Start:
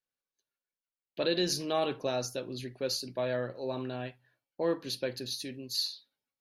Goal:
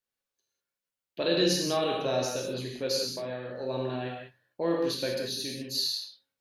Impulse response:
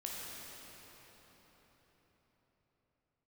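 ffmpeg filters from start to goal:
-filter_complex "[0:a]asettb=1/sr,asplit=3[s0][s1][s2];[s0]atrim=end=2.994[s3];[s1]atrim=start=2.99:end=3.51,asetpts=PTS-STARTPTS,afade=t=in:d=0.004:c=qsin,afade=t=out:st=0.516:d=0.004:c=qsin,acompressor=threshold=0.0158:ratio=6[s4];[s2]atrim=start=3.506[s5];[s3][s4]acrossfade=d=0.004:c1=hsin:c2=qsin[s6];[s6][s5]acrossfade=d=0.004:c1=qsin:c2=hsin[s7];[1:a]atrim=start_sample=2205,afade=t=out:st=0.25:d=0.01,atrim=end_sample=11466[s8];[s7][s8]afir=irnorm=-1:irlink=0,volume=1.88"

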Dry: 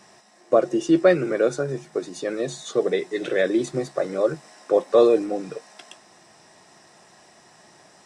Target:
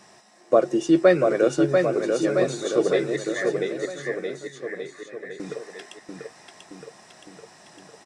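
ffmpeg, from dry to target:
-filter_complex "[0:a]asettb=1/sr,asplit=3[s0][s1][s2];[s0]atrim=end=3.164[s3];[s1]atrim=start=3.16:end=5.4,asetpts=PTS-STARTPTS,afade=t=in:d=0.004:c=qsin,afade=t=out:st=2.236:d=0.004:c=qsin,asuperpass=centerf=1900:order=4:qfactor=4.6[s4];[s2]atrim=start=5.396[s5];[s3][s4]acrossfade=d=0.004:c1=hsin:c2=qsin[s6];[s6][s5]acrossfade=d=0.004:c1=qsin:c2=hsin,aecho=1:1:690|1311|1870|2373|2826:0.631|0.398|0.251|0.158|0.1"

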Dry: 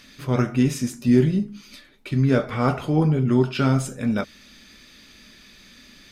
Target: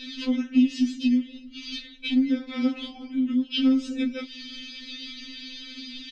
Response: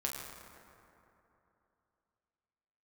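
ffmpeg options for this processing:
-af "firequalizer=gain_entry='entry(190,0);entry(390,11);entry(630,-14);entry(3100,13);entry(11000,-28)':delay=0.05:min_phase=1,acompressor=threshold=0.0501:ratio=12,afftfilt=real='re*3.46*eq(mod(b,12),0)':imag='im*3.46*eq(mod(b,12),0)':win_size=2048:overlap=0.75,volume=2"

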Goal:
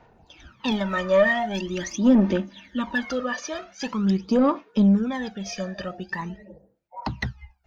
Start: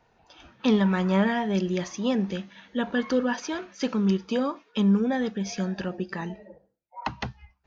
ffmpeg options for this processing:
-filter_complex "[0:a]aphaser=in_gain=1:out_gain=1:delay=1.7:decay=0.73:speed=0.44:type=sinusoidal,asoftclip=type=tanh:threshold=0.316,asettb=1/sr,asplit=3[s0][s1][s2];[s0]atrim=end=0.714[s3];[s1]atrim=start=0.71:end=3.06,asetpts=PTS-STARTPTS,afade=t=in:d=0.004:c=qsin,afade=t=out:st=2.346:d=0.004:c=qsin,aecho=1:1:3.3:0.64,atrim=end_sample=103635[s4];[s2]atrim=start=3.056[s5];[s3][s4]acrossfade=d=0.004:c1=hsin:c2=qsin[s6];[s6][s5]acrossfade=d=0.004:c1=qsin:c2=hsin,volume=0.891"

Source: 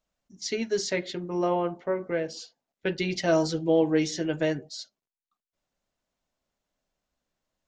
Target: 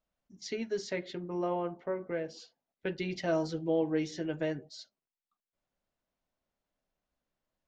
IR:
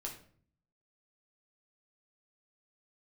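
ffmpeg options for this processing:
-filter_complex "[0:a]aemphasis=mode=reproduction:type=50fm,asplit=2[s0][s1];[s1]acompressor=threshold=0.0178:ratio=6,volume=0.708[s2];[s0][s2]amix=inputs=2:normalize=0,volume=0.376"

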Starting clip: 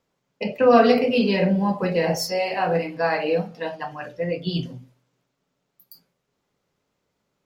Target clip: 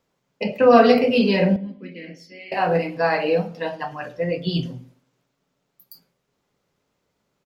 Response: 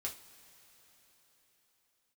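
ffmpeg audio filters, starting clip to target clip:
-filter_complex "[0:a]asettb=1/sr,asplit=3[s0][s1][s2];[s0]atrim=end=1.564[s3];[s1]atrim=start=1.56:end=2.52,asetpts=PTS-STARTPTS,afade=t=in:d=0.004:c=qsin,afade=t=out:st=0.956:d=0.004:c=qsin,asplit=3[s4][s5][s6];[s4]bandpass=f=270:t=q:w=8,volume=1[s7];[s5]bandpass=f=2290:t=q:w=8,volume=0.501[s8];[s6]bandpass=f=3010:t=q:w=8,volume=0.355[s9];[s7][s8][s9]amix=inputs=3:normalize=0[s10];[s2]atrim=start=2.516[s11];[s3][s10]acrossfade=d=0.004:c1=hsin:c2=qsin[s12];[s12][s11]acrossfade=d=0.004:c1=qsin:c2=hsin,asplit=2[s13][s14];[s14]adelay=107,lowpass=f=1600:p=1,volume=0.106,asplit=2[s15][s16];[s16]adelay=107,lowpass=f=1600:p=1,volume=0.33,asplit=2[s17][s18];[s18]adelay=107,lowpass=f=1600:p=1,volume=0.33[s19];[s13][s15][s17][s19]amix=inputs=4:normalize=0,volume=1.26"

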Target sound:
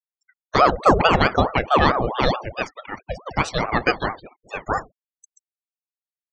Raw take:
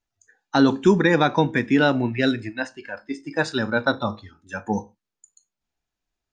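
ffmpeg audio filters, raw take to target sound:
-af "afftfilt=real='re*gte(hypot(re,im),0.0112)':imag='im*gte(hypot(re,im),0.0112)':win_size=1024:overlap=0.75,aeval=exprs='val(0)*sin(2*PI*610*n/s+610*0.65/4.6*sin(2*PI*4.6*n/s))':c=same,volume=1.58"

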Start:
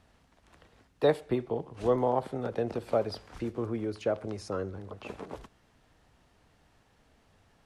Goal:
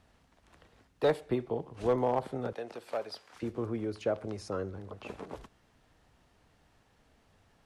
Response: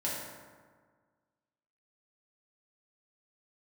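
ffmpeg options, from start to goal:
-filter_complex "[0:a]asoftclip=type=hard:threshold=0.133,asettb=1/sr,asplit=3[s0][s1][s2];[s0]atrim=end=2.534[s3];[s1]atrim=start=2.53:end=3.43,asetpts=PTS-STARTPTS,afade=t=in:d=0.004:c=qsin,afade=t=out:st=0.896:d=0.004:c=qsin,highpass=f=990:p=1[s4];[s2]atrim=start=3.426[s5];[s3][s4]acrossfade=d=0.004:c1=hsin:c2=qsin[s6];[s6][s5]acrossfade=d=0.004:c1=qsin:c2=hsin,volume=0.841"

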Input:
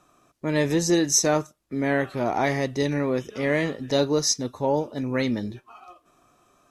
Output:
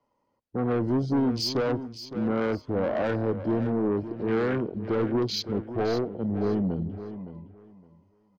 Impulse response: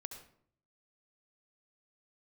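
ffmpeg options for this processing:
-filter_complex "[0:a]asetrate=35280,aresample=44100,afwtdn=0.0398,highshelf=f=8500:g=-10.5,acrossover=split=330|880[s0][s1][s2];[s1]acontrast=39[s3];[s0][s3][s2]amix=inputs=3:normalize=0,aemphasis=mode=reproduction:type=cd,asoftclip=type=tanh:threshold=0.1,acrossover=split=270[s4][s5];[s5]acompressor=threshold=0.0501:ratio=2[s6];[s4][s6]amix=inputs=2:normalize=0,asplit=2[s7][s8];[s8]aecho=0:1:563|1126|1689:0.251|0.0502|0.01[s9];[s7][s9]amix=inputs=2:normalize=0"

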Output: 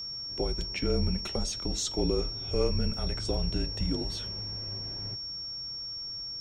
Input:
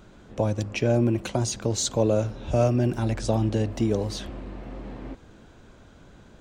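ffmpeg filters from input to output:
-af "afreqshift=-150,flanger=delay=5.3:depth=6.8:regen=-78:speed=0.47:shape=triangular,aeval=exprs='val(0)+0.02*sin(2*PI*5500*n/s)':c=same,volume=0.841"

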